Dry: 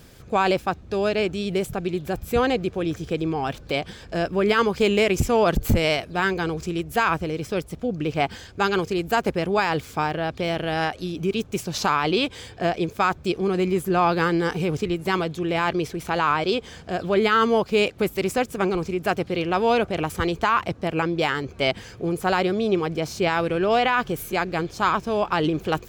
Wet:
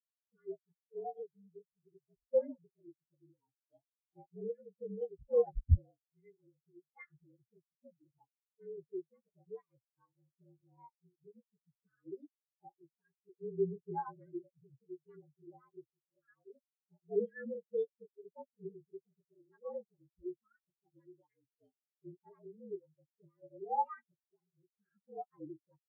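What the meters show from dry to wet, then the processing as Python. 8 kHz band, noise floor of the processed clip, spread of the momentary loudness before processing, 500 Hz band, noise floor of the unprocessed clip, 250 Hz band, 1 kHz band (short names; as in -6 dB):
under -40 dB, under -85 dBFS, 7 LU, -17.5 dB, -44 dBFS, -26.0 dB, -22.5 dB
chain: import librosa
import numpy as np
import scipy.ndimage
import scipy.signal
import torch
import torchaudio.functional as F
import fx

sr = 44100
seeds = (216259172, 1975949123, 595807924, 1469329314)

y = fx.partial_stretch(x, sr, pct=115)
y = fx.rotary(y, sr, hz=0.7)
y = fx.spectral_expand(y, sr, expansion=4.0)
y = F.gain(torch.from_numpy(y), -4.5).numpy()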